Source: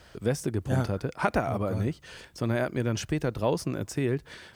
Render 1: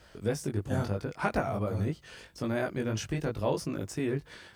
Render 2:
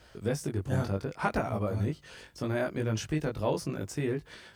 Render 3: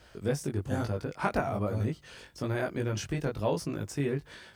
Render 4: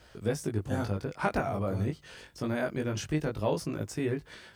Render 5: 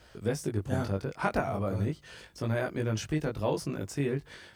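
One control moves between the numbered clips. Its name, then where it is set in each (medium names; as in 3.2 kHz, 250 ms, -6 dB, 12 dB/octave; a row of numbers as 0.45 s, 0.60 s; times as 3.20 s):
chorus, rate: 3 Hz, 0.68 Hz, 1.1 Hz, 0.24 Hz, 0.37 Hz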